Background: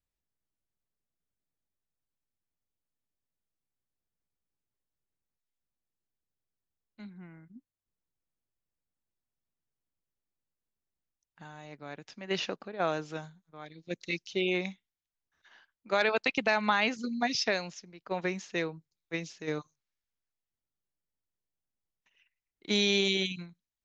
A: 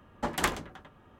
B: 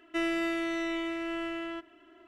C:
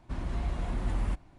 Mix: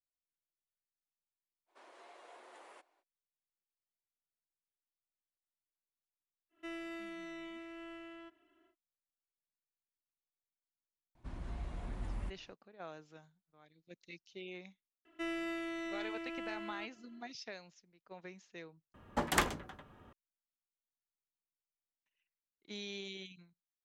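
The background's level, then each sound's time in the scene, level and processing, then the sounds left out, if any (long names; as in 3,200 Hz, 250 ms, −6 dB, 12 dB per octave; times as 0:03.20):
background −18 dB
0:01.66: mix in C −12.5 dB, fades 0.05 s + Butterworth high-pass 400 Hz
0:06.49: mix in B −14.5 dB, fades 0.10 s
0:11.15: mix in C −10.5 dB
0:15.05: mix in B −9 dB
0:18.94: overwrite with A −2 dB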